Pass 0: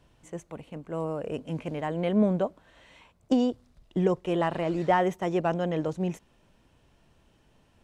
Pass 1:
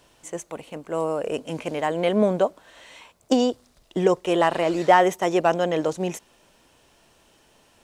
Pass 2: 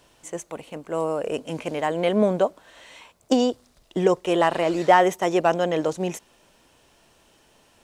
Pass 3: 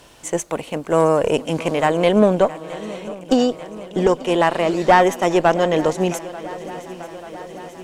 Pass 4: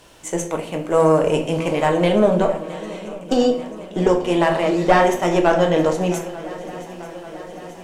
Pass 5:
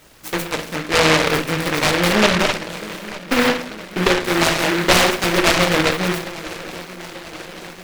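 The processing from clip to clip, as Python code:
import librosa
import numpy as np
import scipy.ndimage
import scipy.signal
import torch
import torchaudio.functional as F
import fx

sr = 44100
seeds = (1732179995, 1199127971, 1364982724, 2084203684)

y1 = fx.bass_treble(x, sr, bass_db=-12, treble_db=7)
y1 = y1 * librosa.db_to_amplitude(8.0)
y2 = y1
y3 = fx.rider(y2, sr, range_db=5, speed_s=2.0)
y3 = fx.tube_stage(y3, sr, drive_db=10.0, bias=0.45)
y3 = fx.echo_swing(y3, sr, ms=888, ratio=3, feedback_pct=66, wet_db=-18.0)
y3 = y3 * librosa.db_to_amplitude(7.0)
y4 = fx.room_shoebox(y3, sr, seeds[0], volume_m3=83.0, walls='mixed', distance_m=0.57)
y4 = y4 * librosa.db_to_amplitude(-2.5)
y5 = fx.noise_mod_delay(y4, sr, seeds[1], noise_hz=1500.0, depth_ms=0.3)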